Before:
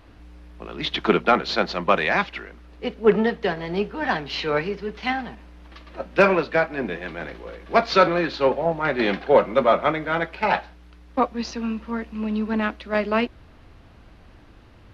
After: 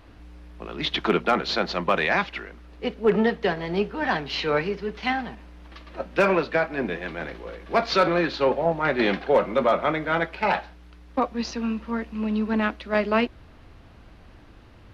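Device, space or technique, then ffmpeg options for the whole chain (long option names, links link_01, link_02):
clipper into limiter: -af "asoftclip=type=hard:threshold=-7dB,alimiter=limit=-11dB:level=0:latency=1:release=48"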